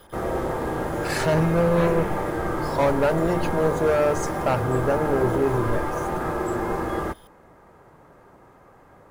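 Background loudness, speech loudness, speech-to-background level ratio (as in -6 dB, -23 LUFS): -27.5 LUFS, -23.5 LUFS, 4.0 dB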